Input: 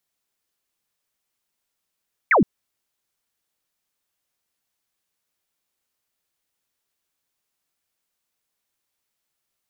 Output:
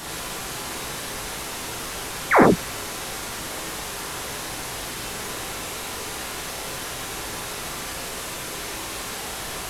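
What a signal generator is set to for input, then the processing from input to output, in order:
laser zap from 2400 Hz, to 160 Hz, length 0.12 s sine, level -12 dB
delta modulation 64 kbps, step -23 dBFS; high shelf 2000 Hz -10 dB; non-linear reverb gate 0.14 s flat, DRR -4 dB

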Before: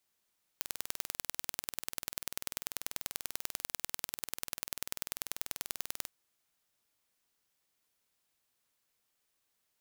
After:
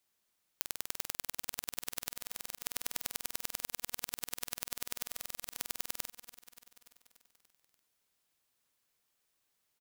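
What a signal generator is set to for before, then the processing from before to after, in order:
pulse train 20.4/s, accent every 2, -6.5 dBFS 5.49 s
feedback echo 0.29 s, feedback 60%, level -14 dB; stuck buffer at 2.12/5.07, samples 2048, times 9

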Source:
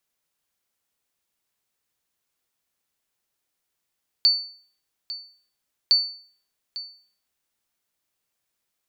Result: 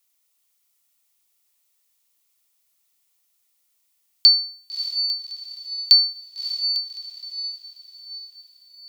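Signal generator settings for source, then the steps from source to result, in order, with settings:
sonar ping 4500 Hz, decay 0.48 s, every 1.66 s, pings 2, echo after 0.85 s, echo -16 dB -10.5 dBFS
tilt +3 dB/oct; notch 1600 Hz, Q 7.3; diffused feedback echo 0.61 s, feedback 47%, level -8 dB

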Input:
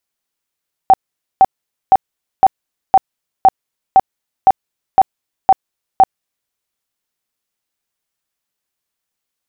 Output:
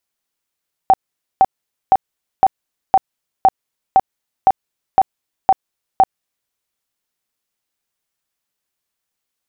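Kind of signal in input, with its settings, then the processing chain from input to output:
tone bursts 768 Hz, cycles 28, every 0.51 s, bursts 11, -3 dBFS
compressor, threshold -9 dBFS

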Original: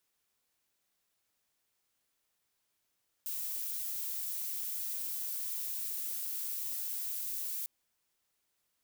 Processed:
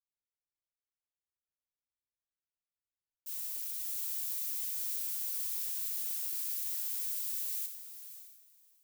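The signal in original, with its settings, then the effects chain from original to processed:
noise violet, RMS -37.5 dBFS 4.40 s
low shelf 400 Hz -9.5 dB; diffused feedback echo 0.591 s, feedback 40%, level -5.5 dB; three-band expander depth 100%

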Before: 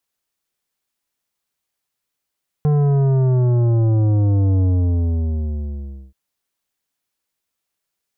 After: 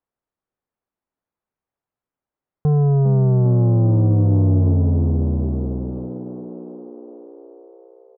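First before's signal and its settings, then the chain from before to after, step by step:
sub drop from 150 Hz, over 3.48 s, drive 11 dB, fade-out 1.51 s, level -14 dB
LPF 1100 Hz 12 dB/oct; on a send: frequency-shifting echo 0.4 s, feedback 65%, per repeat +54 Hz, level -11 dB

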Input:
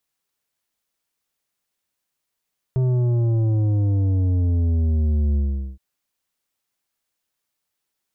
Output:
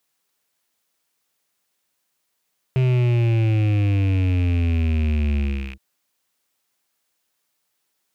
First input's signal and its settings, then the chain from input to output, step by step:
sub drop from 130 Hz, over 3.02 s, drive 9 dB, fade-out 0.42 s, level -17.5 dB
rattling part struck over -35 dBFS, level -31 dBFS; HPF 150 Hz 6 dB/oct; in parallel at +1 dB: overloaded stage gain 23 dB

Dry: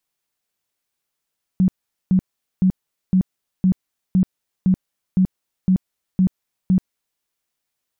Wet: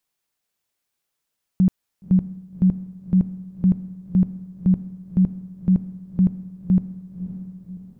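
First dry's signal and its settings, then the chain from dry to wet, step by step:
tone bursts 186 Hz, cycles 15, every 0.51 s, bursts 11, -11.5 dBFS
diffused feedback echo 0.57 s, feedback 50%, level -12 dB

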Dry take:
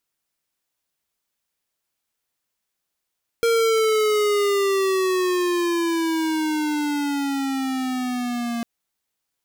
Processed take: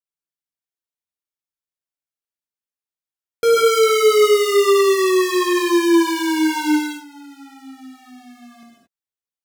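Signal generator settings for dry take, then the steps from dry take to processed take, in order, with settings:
gliding synth tone square, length 5.20 s, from 465 Hz, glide -12 st, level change -8 dB, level -18 dB
gate with hold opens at -22 dBFS; non-linear reverb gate 0.25 s flat, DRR -3 dB

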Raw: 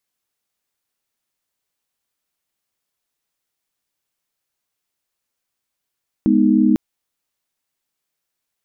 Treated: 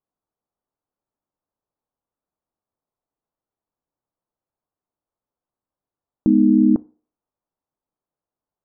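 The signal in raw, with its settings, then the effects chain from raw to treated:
chord G#3/B3/D#4 sine, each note -15.5 dBFS 0.50 s
LPF 1100 Hz 24 dB/oct; FDN reverb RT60 0.45 s, low-frequency decay 0.75×, high-frequency decay 0.8×, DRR 18 dB

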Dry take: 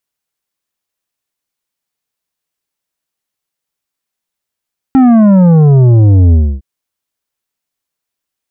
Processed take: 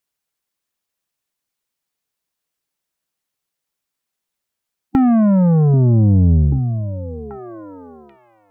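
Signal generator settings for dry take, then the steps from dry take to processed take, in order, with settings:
sub drop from 270 Hz, over 1.66 s, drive 9 dB, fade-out 0.28 s, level -4 dB
harmonic-percussive split harmonic -3 dB; compressor, threshold -12 dBFS; on a send: delay with a stepping band-pass 0.786 s, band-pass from 160 Hz, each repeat 1.4 oct, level -5 dB

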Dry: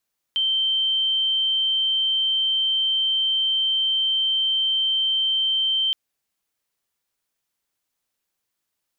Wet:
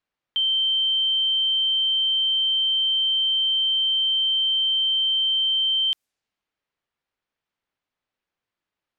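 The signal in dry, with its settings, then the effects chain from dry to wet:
tone sine 3120 Hz -18.5 dBFS 5.57 s
low-pass opened by the level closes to 2900 Hz, open at -25.5 dBFS

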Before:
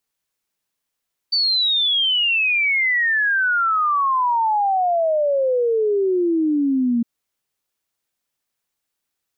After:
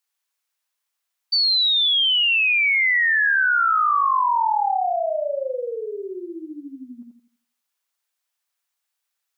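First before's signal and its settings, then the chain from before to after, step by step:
log sweep 4600 Hz -> 230 Hz 5.71 s -15.5 dBFS
HPF 880 Hz 12 dB/oct; on a send: dark delay 84 ms, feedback 34%, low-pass 1300 Hz, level -3 dB

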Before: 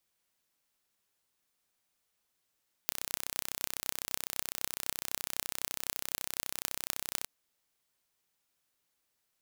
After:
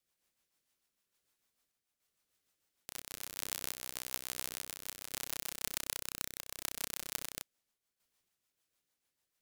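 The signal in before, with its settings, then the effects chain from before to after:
pulse train 31.9/s, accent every 8, -2.5 dBFS 4.38 s
reverse delay 0.173 s, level -1.5 dB; rotary speaker horn 6.7 Hz; random-step tremolo

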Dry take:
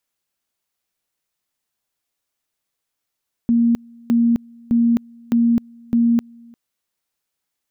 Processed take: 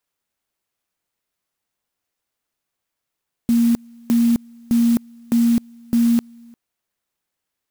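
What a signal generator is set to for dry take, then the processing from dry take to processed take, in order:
two-level tone 234 Hz -12 dBFS, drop 28.5 dB, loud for 0.26 s, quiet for 0.35 s, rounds 5
clock jitter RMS 0.063 ms

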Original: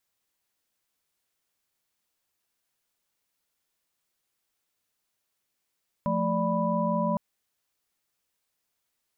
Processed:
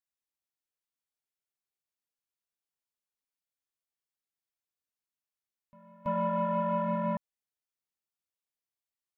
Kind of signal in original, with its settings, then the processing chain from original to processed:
chord F3/A3/D5/B5 sine, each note -29 dBFS 1.11 s
soft clip -23.5 dBFS; reverse echo 0.33 s -10 dB; upward expander 2.5:1, over -39 dBFS

